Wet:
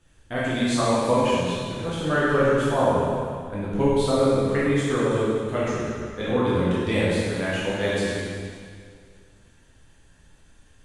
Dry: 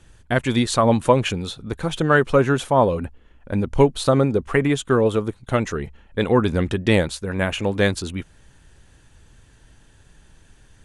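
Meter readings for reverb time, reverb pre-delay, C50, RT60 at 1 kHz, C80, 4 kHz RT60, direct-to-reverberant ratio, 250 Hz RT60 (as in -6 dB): 2.1 s, 5 ms, -3.0 dB, 2.1 s, -1.0 dB, 2.0 s, -9.0 dB, 2.1 s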